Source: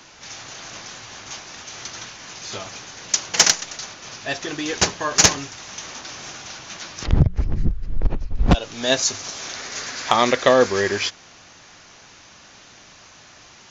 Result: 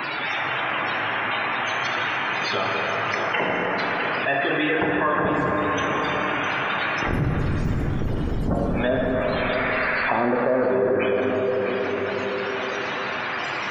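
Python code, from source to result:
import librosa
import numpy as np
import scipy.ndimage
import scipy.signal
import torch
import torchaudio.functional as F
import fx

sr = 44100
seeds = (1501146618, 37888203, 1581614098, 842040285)

y = fx.env_lowpass_down(x, sr, base_hz=460.0, full_db=-16.0)
y = scipy.signal.sosfilt(scipy.signal.butter(2, 2700.0, 'lowpass', fs=sr, output='sos'), y)
y = fx.quant_dither(y, sr, seeds[0], bits=8, dither='none')
y = fx.low_shelf(y, sr, hz=84.0, db=-9.5)
y = 10.0 ** (-16.0 / 20.0) * np.tanh(y / 10.0 ** (-16.0 / 20.0))
y = fx.spec_topn(y, sr, count=64)
y = fx.tilt_eq(y, sr, slope=2.0)
y = y + 10.0 ** (-12.0 / 20.0) * np.pad(y, (int(659 * sr / 1000.0), 0))[:len(y)]
y = fx.rev_plate(y, sr, seeds[1], rt60_s=3.9, hf_ratio=0.45, predelay_ms=0, drr_db=-0.5)
y = fx.env_flatten(y, sr, amount_pct=70)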